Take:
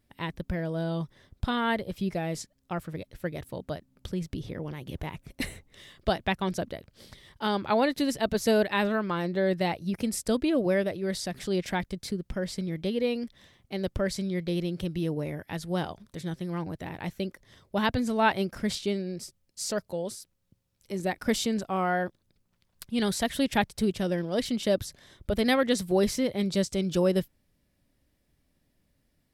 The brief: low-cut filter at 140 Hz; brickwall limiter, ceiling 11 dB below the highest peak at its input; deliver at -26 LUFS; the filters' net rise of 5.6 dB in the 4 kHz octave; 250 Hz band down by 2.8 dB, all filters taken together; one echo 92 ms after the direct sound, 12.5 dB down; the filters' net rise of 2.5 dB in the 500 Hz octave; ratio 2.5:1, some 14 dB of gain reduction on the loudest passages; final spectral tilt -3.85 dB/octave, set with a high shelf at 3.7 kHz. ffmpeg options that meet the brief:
-af "highpass=140,equalizer=f=250:t=o:g=-4,equalizer=f=500:t=o:g=4,highshelf=f=3700:g=5.5,equalizer=f=4000:t=o:g=3.5,acompressor=threshold=0.01:ratio=2.5,alimiter=level_in=1.78:limit=0.0631:level=0:latency=1,volume=0.562,aecho=1:1:92:0.237,volume=5.31"

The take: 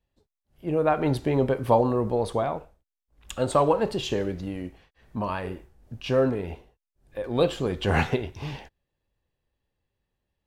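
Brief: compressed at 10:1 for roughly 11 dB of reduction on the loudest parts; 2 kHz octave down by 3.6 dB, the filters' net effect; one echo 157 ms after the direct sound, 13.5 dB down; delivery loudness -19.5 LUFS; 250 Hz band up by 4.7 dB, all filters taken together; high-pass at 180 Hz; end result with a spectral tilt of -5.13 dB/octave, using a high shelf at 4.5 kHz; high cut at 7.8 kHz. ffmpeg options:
-af "highpass=180,lowpass=7800,equalizer=f=250:t=o:g=7,equalizer=f=2000:t=o:g=-7,highshelf=f=4500:g=9,acompressor=threshold=0.0562:ratio=10,aecho=1:1:157:0.211,volume=4.22"

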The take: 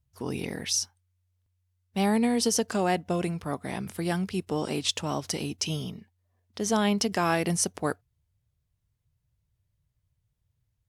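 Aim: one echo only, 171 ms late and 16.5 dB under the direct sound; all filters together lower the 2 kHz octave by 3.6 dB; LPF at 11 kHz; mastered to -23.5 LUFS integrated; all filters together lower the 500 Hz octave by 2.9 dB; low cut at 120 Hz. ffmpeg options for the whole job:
-af "highpass=120,lowpass=11000,equalizer=f=500:t=o:g=-3.5,equalizer=f=2000:t=o:g=-4.5,aecho=1:1:171:0.15,volume=2"

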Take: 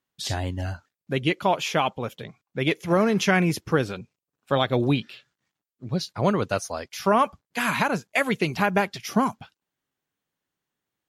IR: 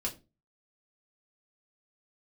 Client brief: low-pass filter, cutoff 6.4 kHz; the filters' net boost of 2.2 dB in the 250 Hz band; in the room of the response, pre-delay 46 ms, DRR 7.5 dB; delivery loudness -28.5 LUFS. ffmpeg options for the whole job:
-filter_complex "[0:a]lowpass=6400,equalizer=f=250:t=o:g=3,asplit=2[s0][s1];[1:a]atrim=start_sample=2205,adelay=46[s2];[s1][s2]afir=irnorm=-1:irlink=0,volume=0.316[s3];[s0][s3]amix=inputs=2:normalize=0,volume=0.531"

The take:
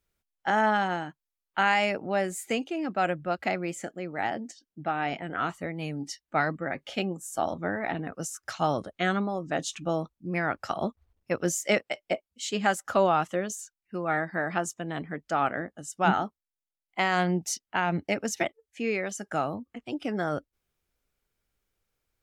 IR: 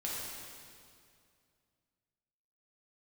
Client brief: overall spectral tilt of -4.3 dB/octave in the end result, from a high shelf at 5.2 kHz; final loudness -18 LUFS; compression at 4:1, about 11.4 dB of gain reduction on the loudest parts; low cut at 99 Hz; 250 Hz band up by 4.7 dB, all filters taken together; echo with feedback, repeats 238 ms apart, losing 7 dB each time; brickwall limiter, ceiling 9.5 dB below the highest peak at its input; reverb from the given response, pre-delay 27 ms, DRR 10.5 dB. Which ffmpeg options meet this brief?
-filter_complex "[0:a]highpass=99,equalizer=f=250:t=o:g=7,highshelf=f=5200:g=5,acompressor=threshold=0.0316:ratio=4,alimiter=level_in=1.12:limit=0.0631:level=0:latency=1,volume=0.891,aecho=1:1:238|476|714|952|1190:0.447|0.201|0.0905|0.0407|0.0183,asplit=2[s0][s1];[1:a]atrim=start_sample=2205,adelay=27[s2];[s1][s2]afir=irnorm=-1:irlink=0,volume=0.211[s3];[s0][s3]amix=inputs=2:normalize=0,volume=7.08"

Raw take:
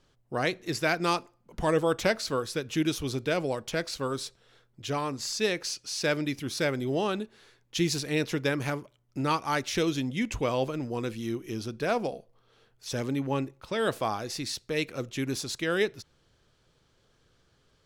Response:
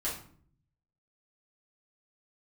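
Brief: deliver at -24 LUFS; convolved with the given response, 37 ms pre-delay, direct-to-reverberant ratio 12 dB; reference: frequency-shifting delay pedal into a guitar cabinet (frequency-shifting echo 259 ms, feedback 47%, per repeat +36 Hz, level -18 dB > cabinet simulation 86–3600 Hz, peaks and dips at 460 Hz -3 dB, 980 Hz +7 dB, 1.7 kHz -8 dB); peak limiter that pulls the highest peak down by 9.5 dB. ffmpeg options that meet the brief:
-filter_complex "[0:a]alimiter=limit=0.0944:level=0:latency=1,asplit=2[s0][s1];[1:a]atrim=start_sample=2205,adelay=37[s2];[s1][s2]afir=irnorm=-1:irlink=0,volume=0.15[s3];[s0][s3]amix=inputs=2:normalize=0,asplit=5[s4][s5][s6][s7][s8];[s5]adelay=259,afreqshift=36,volume=0.126[s9];[s6]adelay=518,afreqshift=72,volume=0.0589[s10];[s7]adelay=777,afreqshift=108,volume=0.0279[s11];[s8]adelay=1036,afreqshift=144,volume=0.013[s12];[s4][s9][s10][s11][s12]amix=inputs=5:normalize=0,highpass=86,equalizer=f=460:t=q:w=4:g=-3,equalizer=f=980:t=q:w=4:g=7,equalizer=f=1700:t=q:w=4:g=-8,lowpass=f=3600:w=0.5412,lowpass=f=3600:w=1.3066,volume=2.82"

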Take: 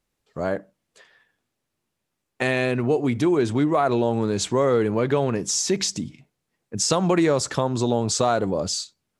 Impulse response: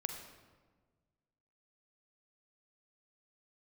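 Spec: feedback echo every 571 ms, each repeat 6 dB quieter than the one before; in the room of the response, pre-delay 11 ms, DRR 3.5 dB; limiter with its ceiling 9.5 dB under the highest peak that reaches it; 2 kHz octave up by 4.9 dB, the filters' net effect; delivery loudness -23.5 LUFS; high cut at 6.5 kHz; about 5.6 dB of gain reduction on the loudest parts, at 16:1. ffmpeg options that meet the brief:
-filter_complex "[0:a]lowpass=6500,equalizer=f=2000:t=o:g=6,acompressor=threshold=0.1:ratio=16,alimiter=limit=0.133:level=0:latency=1,aecho=1:1:571|1142|1713|2284|2855|3426:0.501|0.251|0.125|0.0626|0.0313|0.0157,asplit=2[s0][s1];[1:a]atrim=start_sample=2205,adelay=11[s2];[s1][s2]afir=irnorm=-1:irlink=0,volume=0.668[s3];[s0][s3]amix=inputs=2:normalize=0,volume=1.26"

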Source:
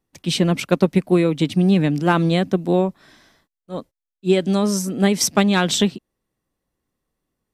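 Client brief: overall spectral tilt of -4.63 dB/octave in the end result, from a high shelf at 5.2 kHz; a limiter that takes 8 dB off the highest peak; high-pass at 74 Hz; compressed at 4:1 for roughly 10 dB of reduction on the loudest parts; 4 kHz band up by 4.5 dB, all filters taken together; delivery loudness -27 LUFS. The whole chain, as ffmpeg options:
-af "highpass=74,equalizer=f=4000:t=o:g=3.5,highshelf=f=5200:g=5,acompressor=threshold=0.0708:ratio=4,volume=1.19,alimiter=limit=0.158:level=0:latency=1"

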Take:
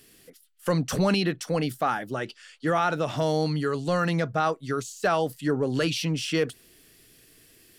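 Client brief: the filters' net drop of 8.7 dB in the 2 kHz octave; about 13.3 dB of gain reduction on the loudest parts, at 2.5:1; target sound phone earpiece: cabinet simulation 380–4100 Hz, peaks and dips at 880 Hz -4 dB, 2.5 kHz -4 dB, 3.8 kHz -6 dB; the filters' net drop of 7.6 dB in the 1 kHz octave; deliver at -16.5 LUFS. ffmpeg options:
-af "equalizer=f=1000:t=o:g=-6,equalizer=f=2000:t=o:g=-8,acompressor=threshold=0.00794:ratio=2.5,highpass=380,equalizer=f=880:t=q:w=4:g=-4,equalizer=f=2500:t=q:w=4:g=-4,equalizer=f=3800:t=q:w=4:g=-6,lowpass=f=4100:w=0.5412,lowpass=f=4100:w=1.3066,volume=26.6"

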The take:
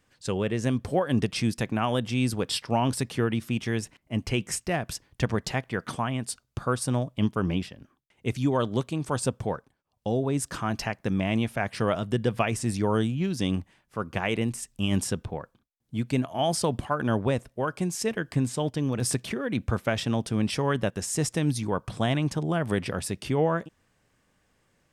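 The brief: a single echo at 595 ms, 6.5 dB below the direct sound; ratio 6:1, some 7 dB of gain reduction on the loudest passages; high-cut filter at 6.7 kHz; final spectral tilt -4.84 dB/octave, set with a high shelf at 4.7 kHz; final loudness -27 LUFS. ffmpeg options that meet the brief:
-af "lowpass=6700,highshelf=f=4700:g=6,acompressor=threshold=0.0447:ratio=6,aecho=1:1:595:0.473,volume=1.78"

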